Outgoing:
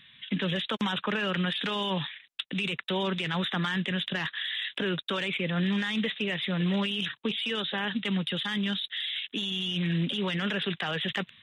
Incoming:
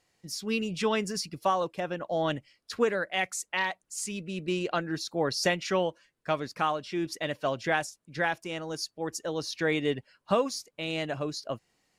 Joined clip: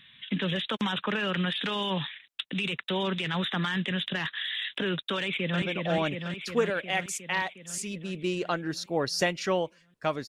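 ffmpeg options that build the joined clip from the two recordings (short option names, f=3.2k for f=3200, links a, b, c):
-filter_complex "[0:a]apad=whole_dur=10.28,atrim=end=10.28,atrim=end=5.622[a];[1:a]atrim=start=1.858:end=6.52[b];[a][b]acrossfade=d=0.004:c1=hsin:c2=hsin,asplit=2[c][d];[d]afade=t=in:st=5.17:d=0.01,afade=t=out:st=5.62:d=0.01,aecho=0:1:360|720|1080|1440|1800|2160|2520|2880|3240|3600|3960|4320:0.707946|0.495562|0.346893|0.242825|0.169978|0.118984|0.0832891|0.0583024|0.0408117|0.0285682|0.0199977|0.0139984[e];[c][e]amix=inputs=2:normalize=0"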